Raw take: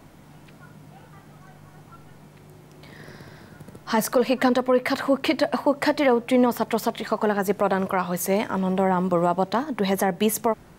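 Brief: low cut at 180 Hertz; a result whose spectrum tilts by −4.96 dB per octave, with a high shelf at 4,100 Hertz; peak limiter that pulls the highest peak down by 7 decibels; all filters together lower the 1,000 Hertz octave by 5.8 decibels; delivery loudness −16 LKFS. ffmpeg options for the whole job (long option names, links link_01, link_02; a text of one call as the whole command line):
ffmpeg -i in.wav -af "highpass=180,equalizer=frequency=1000:width_type=o:gain=-7.5,highshelf=frequency=4100:gain=-4.5,volume=12.5dB,alimiter=limit=-5dB:level=0:latency=1" out.wav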